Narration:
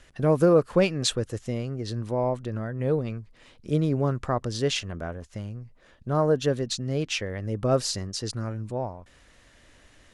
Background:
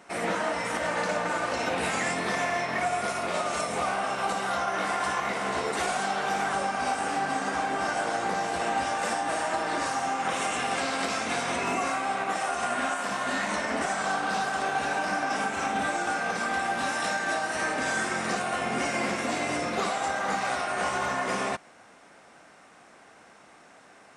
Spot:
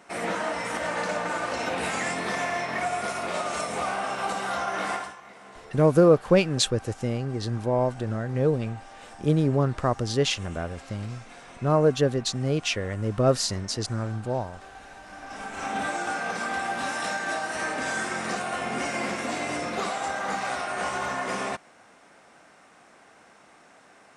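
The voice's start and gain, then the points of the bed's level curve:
5.55 s, +2.0 dB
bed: 4.95 s -0.5 dB
5.17 s -18 dB
15.04 s -18 dB
15.74 s -1 dB

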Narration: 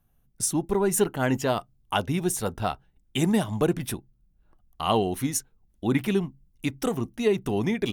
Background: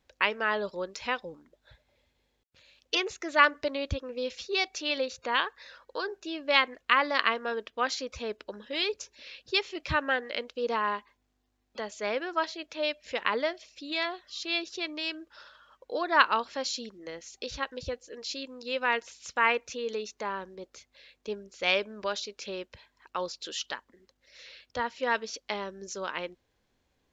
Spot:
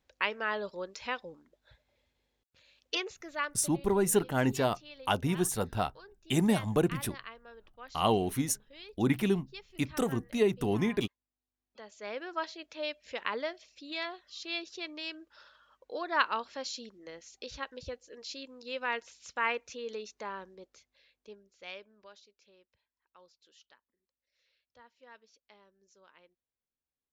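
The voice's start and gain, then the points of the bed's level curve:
3.15 s, -3.5 dB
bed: 2.94 s -4.5 dB
3.81 s -20 dB
11.38 s -20 dB
12.28 s -6 dB
20.44 s -6 dB
22.52 s -26.5 dB

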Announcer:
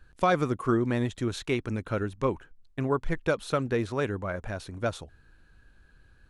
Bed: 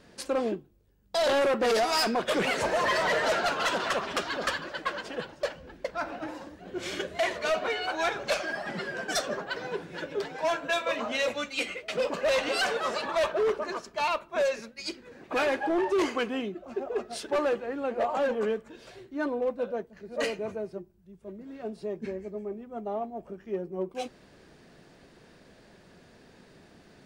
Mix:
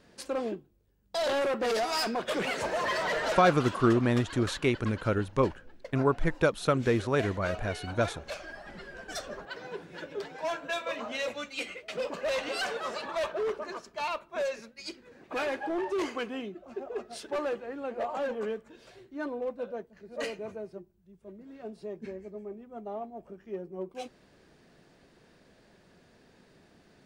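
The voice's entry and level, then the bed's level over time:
3.15 s, +1.5 dB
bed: 3.32 s -4 dB
3.68 s -11 dB
8.80 s -11 dB
9.90 s -5 dB

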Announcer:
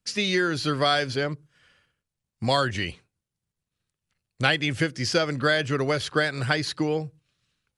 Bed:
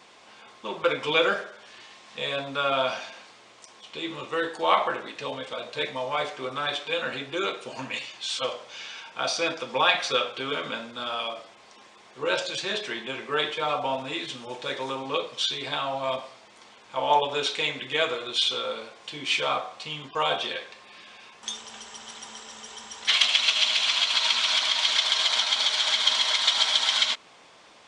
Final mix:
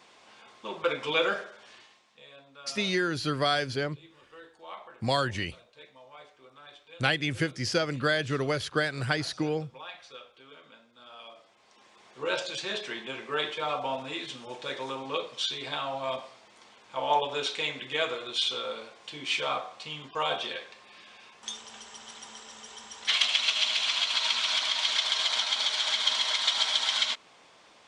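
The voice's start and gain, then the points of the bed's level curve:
2.60 s, -4.0 dB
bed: 1.73 s -4 dB
2.24 s -22 dB
10.87 s -22 dB
12.03 s -4 dB

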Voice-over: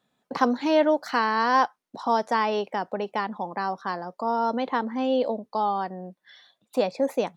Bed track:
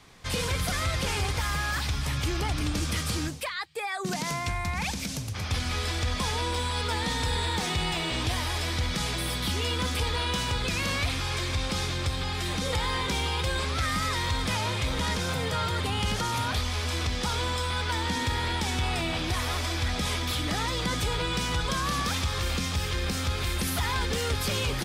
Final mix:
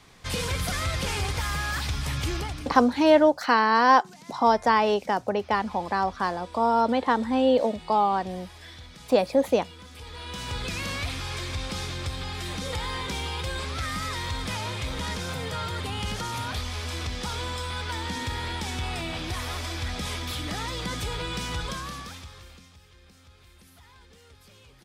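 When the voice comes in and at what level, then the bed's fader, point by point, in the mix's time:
2.35 s, +3.0 dB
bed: 2.35 s 0 dB
2.90 s -17.5 dB
9.89 s -17.5 dB
10.56 s -3 dB
21.64 s -3 dB
22.81 s -25.5 dB

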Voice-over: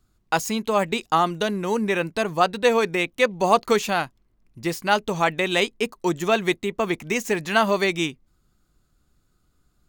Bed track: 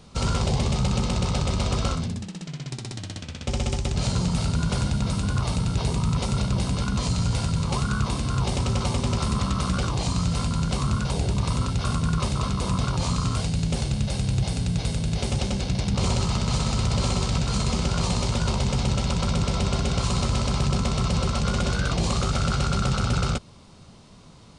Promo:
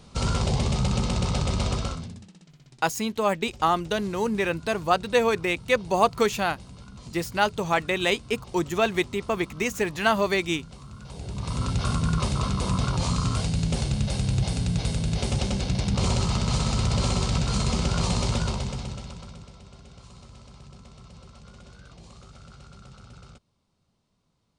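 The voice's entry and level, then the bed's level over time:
2.50 s, -2.5 dB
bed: 1.68 s -1 dB
2.56 s -19.5 dB
10.92 s -19.5 dB
11.70 s -0.5 dB
18.35 s -0.5 dB
19.59 s -24 dB

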